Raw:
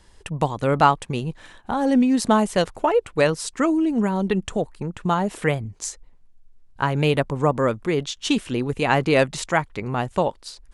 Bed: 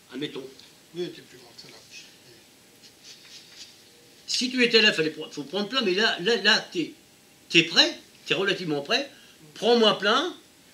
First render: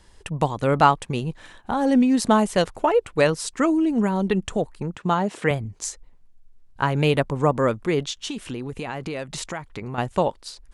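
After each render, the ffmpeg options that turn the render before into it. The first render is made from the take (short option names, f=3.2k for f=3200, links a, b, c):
-filter_complex "[0:a]asettb=1/sr,asplit=3[a][b][c];[a]atrim=end=4.954[d];[b]atrim=start=4.95:end=5.51,asetpts=PTS-STARTPTS,afade=t=in:d=0.004:c=qsin,afade=t=out:st=0.556:d=0.004:c=qsin,highpass=130,lowpass=7.7k[e];[c]atrim=start=5.506[f];[d][e]acrossfade=d=0.004:c1=hsin:c2=qsin[g];[g][f]acrossfade=d=0.004:c1=qsin:c2=hsin,asettb=1/sr,asplit=3[h][i][j];[h]atrim=end=8.204[k];[i]atrim=start=8.2:end=9.98,asetpts=PTS-STARTPTS,afade=t=in:d=0.004:c=qsin,afade=t=out:st=1.776:d=0.004:c=qsin,acompressor=threshold=-27dB:ratio=6:attack=3.2:release=140:knee=1:detection=peak[l];[j]atrim=start=9.976[m];[k][l]acrossfade=d=0.004:c1=hsin:c2=qsin[n];[n][m]acrossfade=d=0.004:c1=qsin:c2=hsin"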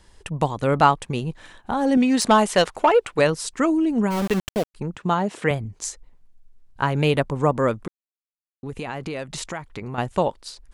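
-filter_complex "[0:a]asettb=1/sr,asplit=3[a][b][c];[a]atrim=end=1.974[d];[b]atrim=start=1.97:end=3.19,asetpts=PTS-STARTPTS,afade=t=in:d=0.004:c=qsin,afade=t=out:st=1.216:d=0.004:c=qsin,asplit=2[e][f];[f]highpass=f=720:p=1,volume=12dB,asoftclip=type=tanh:threshold=-5dB[g];[e][g]amix=inputs=2:normalize=0,lowpass=f=7.2k:p=1,volume=-6dB[h];[c]atrim=start=3.186[i];[d][h]acrossfade=d=0.004:c1=hsin:c2=qsin[j];[j][i]acrossfade=d=0.004:c1=qsin:c2=hsin,asplit=3[k][l][m];[k]afade=t=out:st=4.1:d=0.02[n];[l]aeval=exprs='val(0)*gte(abs(val(0)),0.0562)':c=same,afade=t=in:st=4.1:d=0.02,afade=t=out:st=4.74:d=0.02[o];[m]afade=t=in:st=4.74:d=0.02[p];[n][o][p]amix=inputs=3:normalize=0,asplit=3[q][r][s];[q]atrim=end=7.88,asetpts=PTS-STARTPTS,afade=t=out:st=7.876:d=0.004:c=hsin[t];[r]atrim=start=7.88:end=8.63,asetpts=PTS-STARTPTS,volume=0[u];[s]atrim=start=8.63,asetpts=PTS-STARTPTS,afade=t=in:d=0.004:c=hsin[v];[t][u][v]concat=n=3:v=0:a=1"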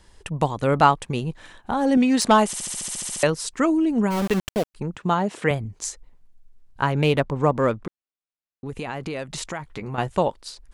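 -filter_complex "[0:a]asettb=1/sr,asplit=3[a][b][c];[a]atrim=end=6.924[d];[b]atrim=start=6.92:end=8.66,asetpts=PTS-STARTPTS,afade=t=in:d=0.004:c=qsin,afade=t=out:st=1.736:d=0.004:c=qsin,adynamicsmooth=sensitivity=3.5:basefreq=5.6k[e];[c]atrim=start=8.656[f];[d][e]acrossfade=d=0.004:c1=hsin:c2=qsin[g];[g][f]acrossfade=d=0.004:c1=qsin:c2=hsin,asettb=1/sr,asplit=3[h][i][j];[h]atrim=end=9.584[k];[i]atrim=start=9.58:end=10.11,asetpts=PTS-STARTPTS,afade=t=in:d=0.004:c=qsin,afade=t=out:st=0.526:d=0.004:c=qsin,asplit=2[l][m];[m]adelay=14,volume=-8.5dB[n];[l][n]amix=inputs=2:normalize=0,atrim=end_sample=23373[o];[j]atrim=start=10.106[p];[k][o]acrossfade=d=0.004:c1=hsin:c2=qsin[q];[q][p]acrossfade=d=0.004:c1=qsin:c2=hsin,asplit=12[r][s][t][u][v][w][x][y][z][aa][ab][ac];[r]atrim=end=2.532[ad];[s]atrim=start=2.458:end=2.532[ae];[t]atrim=start=2.458:end=2.532[af];[u]atrim=start=2.458:end=2.532[ag];[v]atrim=start=2.458:end=2.532[ah];[w]atrim=start=2.458:end=2.532[ai];[x]atrim=start=2.458:end=2.532[aj];[y]atrim=start=2.458:end=2.532[ak];[z]atrim=start=2.458:end=2.532[al];[aa]atrim=start=2.458:end=2.532[am];[ab]atrim=start=2.458:end=2.532[an];[ac]atrim=start=3.228[ao];[ad][ae]acrossfade=d=0.004:c1=hsin:c2=hsin[ap];[ap][af]acrossfade=d=0.004:c1=hsin:c2=hsin[aq];[aq][ag]acrossfade=d=0.004:c1=hsin:c2=hsin[ar];[ar][ah]acrossfade=d=0.004:c1=hsin:c2=hsin[as];[as][ai]acrossfade=d=0.004:c1=hsin:c2=hsin[at];[at][aj]acrossfade=d=0.004:c1=hsin:c2=hsin[au];[au][ak]acrossfade=d=0.004:c1=hsin:c2=hsin[av];[av][al]acrossfade=d=0.004:c1=hsin:c2=hsin[aw];[aw][am]acrossfade=d=0.004:c1=hsin:c2=hsin[ax];[ax][an]acrossfade=d=0.004:c1=hsin:c2=hsin[ay];[ay][ao]acrossfade=d=0.004:c1=hsin:c2=hsin"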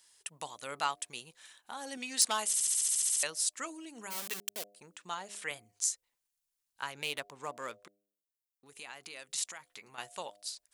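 -af "aderivative,bandreject=f=101.7:t=h:w=4,bandreject=f=203.4:t=h:w=4,bandreject=f=305.1:t=h:w=4,bandreject=f=406.8:t=h:w=4,bandreject=f=508.5:t=h:w=4,bandreject=f=610.2:t=h:w=4,bandreject=f=711.9:t=h:w=4"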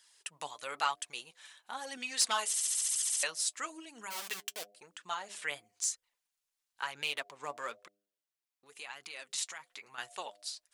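-filter_complex "[0:a]flanger=delay=0.6:depth=6.5:regen=42:speed=1:shape=sinusoidal,asplit=2[a][b];[b]highpass=f=720:p=1,volume=11dB,asoftclip=type=tanh:threshold=-10.5dB[c];[a][c]amix=inputs=2:normalize=0,lowpass=f=5.2k:p=1,volume=-6dB"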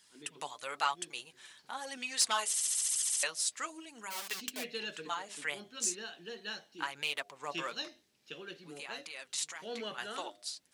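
-filter_complex "[1:a]volume=-22dB[a];[0:a][a]amix=inputs=2:normalize=0"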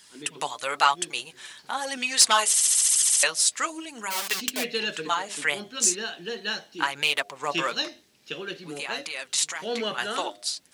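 -af "volume=11.5dB"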